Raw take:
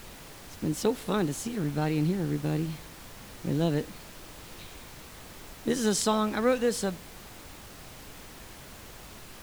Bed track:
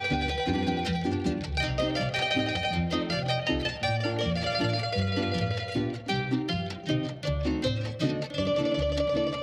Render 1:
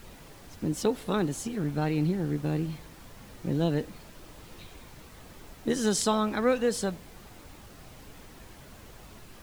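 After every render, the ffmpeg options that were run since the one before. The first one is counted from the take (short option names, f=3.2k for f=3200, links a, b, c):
-af "afftdn=nr=6:nf=-47"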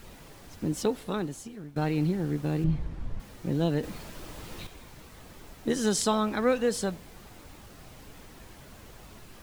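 -filter_complex "[0:a]asettb=1/sr,asplit=3[a][b][c];[a]atrim=end=2.644[d];[b]atrim=start=2.64:end=3.2,asetpts=PTS-STARTPTS,afade=t=in:d=0.004:c=qsin,afade=t=out:st=0.556:d=0.004:c=qsin,aemphasis=mode=reproduction:type=riaa[e];[c]atrim=start=3.196[f];[d][e]acrossfade=d=0.004:c1=hsin:c2=qsin[g];[g][f]acrossfade=d=0.004:c1=qsin:c2=hsin,asettb=1/sr,asplit=3[h][i][j];[h]atrim=end=3.834[k];[i]atrim=start=3.83:end=4.67,asetpts=PTS-STARTPTS,afade=t=in:d=0.004:c=qsin,afade=t=out:st=0.836:d=0.004:c=qsin,acontrast=47[l];[j]atrim=start=4.666[m];[k][l]acrossfade=d=0.004:c1=hsin:c2=qsin[n];[n][m]acrossfade=d=0.004:c1=qsin:c2=hsin,asplit=2[o][p];[o]atrim=end=1.76,asetpts=PTS-STARTPTS,afade=t=out:st=0.77:d=0.99:silence=0.141254[q];[p]atrim=start=1.76,asetpts=PTS-STARTPTS,afade=t=in:d=0.004:c=hsin:silence=0.141254[r];[q][r]concat=n=2:v=0:a=1"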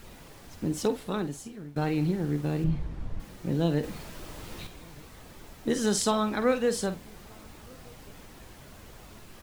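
-filter_complex "[0:a]asplit=2[a][b];[b]adelay=48,volume=-12dB[c];[a][c]amix=inputs=2:normalize=0,asplit=2[d][e];[e]adelay=1224,volume=-28dB,highshelf=f=4k:g=-27.6[f];[d][f]amix=inputs=2:normalize=0"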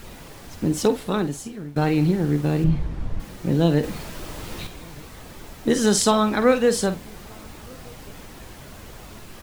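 -af "volume=7.5dB"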